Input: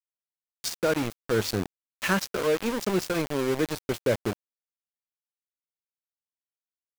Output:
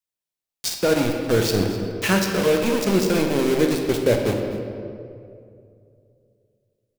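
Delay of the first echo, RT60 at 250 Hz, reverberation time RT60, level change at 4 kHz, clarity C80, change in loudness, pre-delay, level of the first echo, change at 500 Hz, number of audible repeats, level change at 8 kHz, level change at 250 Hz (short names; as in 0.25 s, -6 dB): 0.253 s, 2.6 s, 2.4 s, +6.5 dB, 5.0 dB, +6.5 dB, 10 ms, -17.0 dB, +7.0 dB, 1, +6.5 dB, +8.5 dB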